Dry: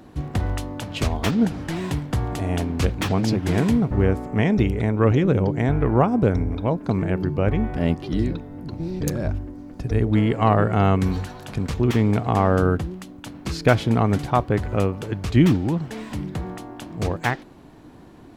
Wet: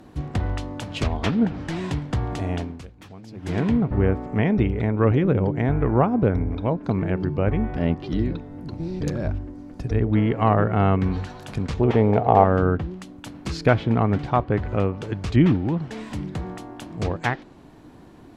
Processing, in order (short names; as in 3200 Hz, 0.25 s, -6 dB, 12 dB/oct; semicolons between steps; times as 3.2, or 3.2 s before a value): 2.35–3.81 dip -20 dB, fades 0.48 s equal-power; 11.8–12.44 band shelf 610 Hz +9.5 dB 1.3 oct; treble ducked by the level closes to 2800 Hz, closed at -16.5 dBFS; gain -1 dB